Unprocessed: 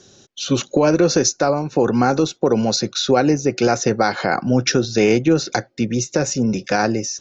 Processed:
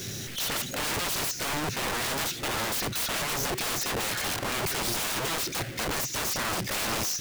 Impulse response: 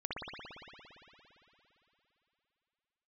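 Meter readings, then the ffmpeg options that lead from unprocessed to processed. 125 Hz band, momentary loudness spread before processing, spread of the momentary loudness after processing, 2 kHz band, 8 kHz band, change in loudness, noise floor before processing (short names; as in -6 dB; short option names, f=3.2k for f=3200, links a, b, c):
-14.0 dB, 6 LU, 2 LU, -5.0 dB, n/a, -10.0 dB, -53 dBFS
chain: -af "aeval=exprs='val(0)+0.5*0.0473*sgn(val(0))':c=same,equalizer=f=125:t=o:w=1:g=8,equalizer=f=500:t=o:w=1:g=-4,equalizer=f=1k:t=o:w=1:g=-10,equalizer=f=2k:t=o:w=1:g=5,aeval=exprs='(mod(9.44*val(0)+1,2)-1)/9.44':c=same,volume=-5.5dB"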